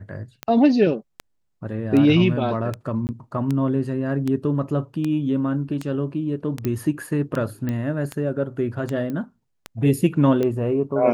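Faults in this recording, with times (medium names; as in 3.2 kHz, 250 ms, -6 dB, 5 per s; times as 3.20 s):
tick 78 rpm -13 dBFS
3.07–3.09 s: dropout 19 ms
6.65 s: pop -12 dBFS
7.69 s: pop -15 dBFS
9.10 s: pop -19 dBFS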